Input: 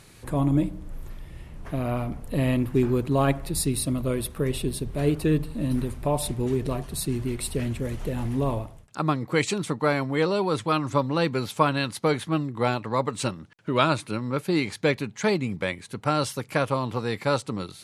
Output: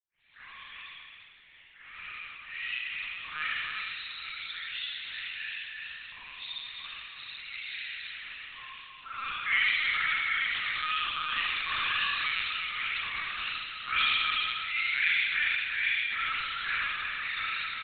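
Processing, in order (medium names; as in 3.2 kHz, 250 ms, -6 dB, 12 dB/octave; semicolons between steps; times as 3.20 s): delay that grows with frequency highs late, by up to 432 ms; inverse Chebyshev high-pass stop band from 560 Hz, stop band 60 dB; harmonic-percussive split harmonic -6 dB; crackle 130 per s -54 dBFS; expander -57 dBFS; multi-tap echo 72/116/346/354 ms -13.5/-7.5/-8/-9 dB; spring tank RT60 1.5 s, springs 37 ms, chirp 40 ms, DRR -9.5 dB; LPC vocoder at 8 kHz pitch kept; MP3 64 kbps 24 kHz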